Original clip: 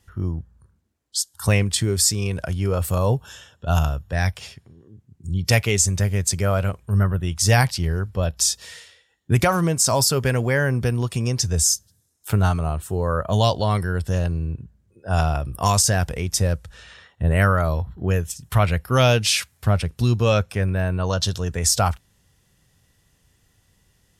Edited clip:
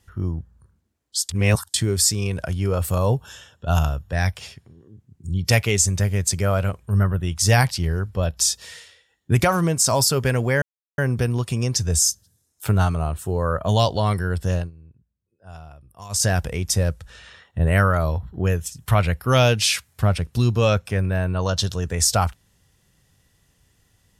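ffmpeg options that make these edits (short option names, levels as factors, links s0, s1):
-filter_complex "[0:a]asplit=6[s0][s1][s2][s3][s4][s5];[s0]atrim=end=1.292[s6];[s1]atrim=start=1.288:end=1.742,asetpts=PTS-STARTPTS,areverse[s7];[s2]atrim=start=1.738:end=10.62,asetpts=PTS-STARTPTS,afade=t=out:st=8.878:d=0.004:c=hsin,apad=pad_dur=0.36[s8];[s3]atrim=start=10.62:end=14.35,asetpts=PTS-STARTPTS,afade=t=in:d=0.004:c=hsin,afade=t=out:st=3.58:d=0.15:silence=0.0944061[s9];[s4]atrim=start=14.35:end=15.73,asetpts=PTS-STARTPTS,volume=0.0944[s10];[s5]atrim=start=15.73,asetpts=PTS-STARTPTS,afade=t=in:d=0.15:silence=0.0944061[s11];[s6][s7]acrossfade=d=0.004:c1=hsin:c2=hsin[s12];[s8][s9][s10][s11]concat=n=4:v=0:a=1[s13];[s12][s13]acrossfade=d=0.004:c1=hsin:c2=hsin"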